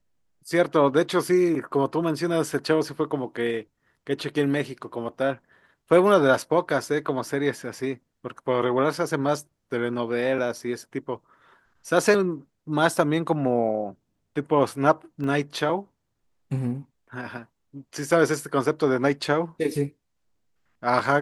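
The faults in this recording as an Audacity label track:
15.240000	15.240000	drop-out 2.7 ms

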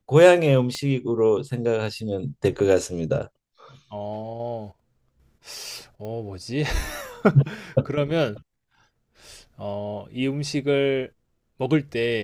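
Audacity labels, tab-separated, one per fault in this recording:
0.750000	0.750000	click −17 dBFS
6.050000	6.050000	click −24 dBFS

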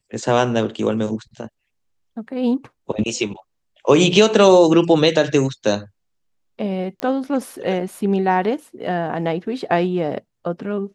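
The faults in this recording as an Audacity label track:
7.000000	7.000000	click −12 dBFS

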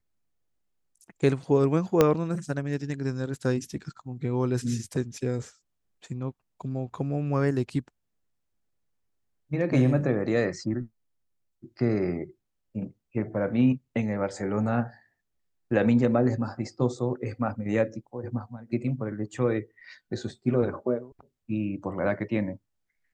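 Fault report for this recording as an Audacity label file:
2.010000	2.010000	click −6 dBFS

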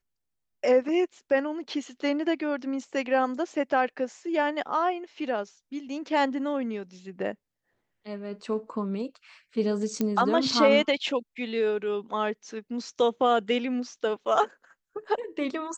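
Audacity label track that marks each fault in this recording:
10.010000	10.010000	click −14 dBFS

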